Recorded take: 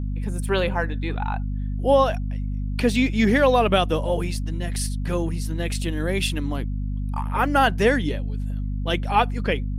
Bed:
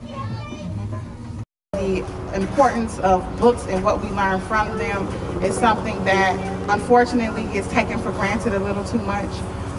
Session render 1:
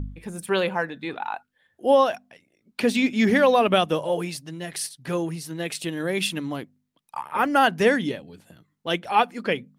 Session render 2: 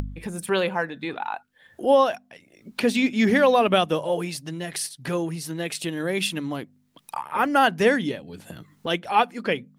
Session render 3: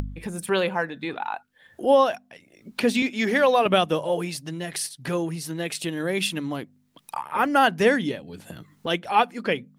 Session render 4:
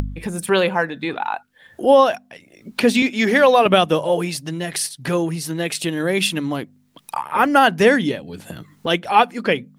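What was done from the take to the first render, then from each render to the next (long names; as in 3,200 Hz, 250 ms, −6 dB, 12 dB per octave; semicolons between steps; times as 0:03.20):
hum removal 50 Hz, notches 5
upward compression, threshold −26 dBFS
0:03.02–0:03.66: Bessel high-pass filter 340 Hz
level +6 dB; brickwall limiter −3 dBFS, peak gain reduction 1.5 dB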